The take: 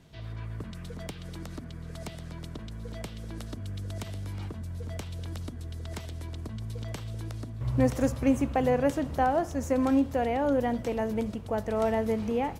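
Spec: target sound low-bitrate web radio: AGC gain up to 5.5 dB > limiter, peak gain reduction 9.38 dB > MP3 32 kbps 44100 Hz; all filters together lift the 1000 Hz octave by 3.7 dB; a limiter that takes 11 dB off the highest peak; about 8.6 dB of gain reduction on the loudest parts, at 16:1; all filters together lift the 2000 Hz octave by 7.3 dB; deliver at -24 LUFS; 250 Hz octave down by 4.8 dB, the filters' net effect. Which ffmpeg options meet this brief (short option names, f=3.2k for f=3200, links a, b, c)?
-af "equalizer=f=250:t=o:g=-5.5,equalizer=f=1k:t=o:g=4.5,equalizer=f=2k:t=o:g=7.5,acompressor=threshold=-27dB:ratio=16,alimiter=level_in=1dB:limit=-24dB:level=0:latency=1,volume=-1dB,dynaudnorm=m=5.5dB,alimiter=level_in=10.5dB:limit=-24dB:level=0:latency=1,volume=-10.5dB,volume=19.5dB" -ar 44100 -c:a libmp3lame -b:a 32k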